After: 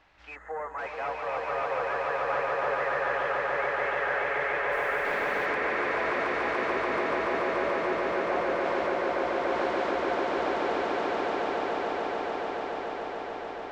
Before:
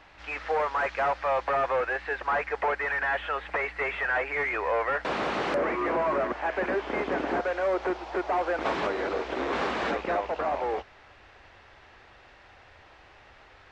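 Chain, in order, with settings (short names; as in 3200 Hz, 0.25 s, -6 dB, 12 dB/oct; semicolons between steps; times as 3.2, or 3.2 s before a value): swelling echo 0.144 s, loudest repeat 8, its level -3.5 dB; 0.35–0.78 spectral gain 2100–6300 Hz -20 dB; 4.71–5.45 added noise pink -46 dBFS; gain -8.5 dB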